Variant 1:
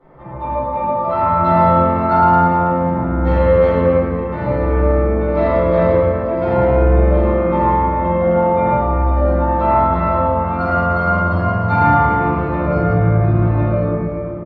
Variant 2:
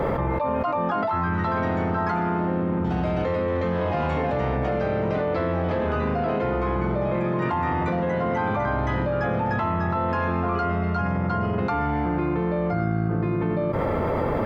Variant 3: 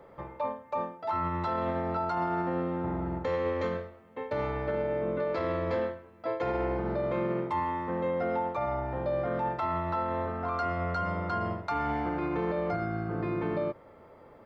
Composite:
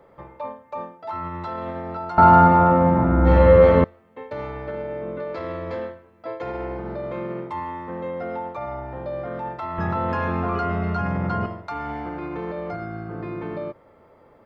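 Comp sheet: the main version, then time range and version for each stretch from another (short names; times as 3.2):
3
2.18–3.84 from 1
9.78–11.46 from 2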